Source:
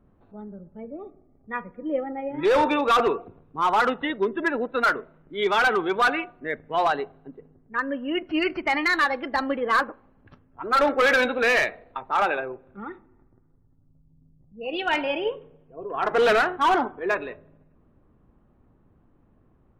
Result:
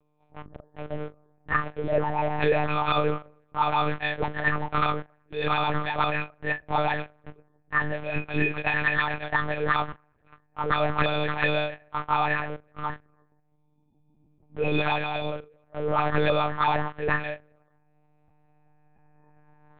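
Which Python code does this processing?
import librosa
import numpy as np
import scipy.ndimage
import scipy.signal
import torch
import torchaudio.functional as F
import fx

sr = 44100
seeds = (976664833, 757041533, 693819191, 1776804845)

p1 = fx.freq_snap(x, sr, grid_st=6)
p2 = fx.recorder_agc(p1, sr, target_db=-7.5, rise_db_per_s=5.3, max_gain_db=30)
p3 = fx.low_shelf(p2, sr, hz=490.0, db=-8.0)
p4 = fx.env_flanger(p3, sr, rest_ms=3.7, full_db=-13.0)
p5 = fx.quant_companded(p4, sr, bits=2)
p6 = p4 + F.gain(torch.from_numpy(p5), -4.0).numpy()
p7 = np.clip(p6, -10.0 ** (-9.5 / 20.0), 10.0 ** (-9.5 / 20.0))
p8 = fx.air_absorb(p7, sr, metres=400.0)
p9 = fx.doubler(p8, sr, ms=36.0, db=-13.5)
p10 = fx.lpc_monotone(p9, sr, seeds[0], pitch_hz=150.0, order=8)
y = F.gain(torch.from_numpy(p10), -1.0).numpy()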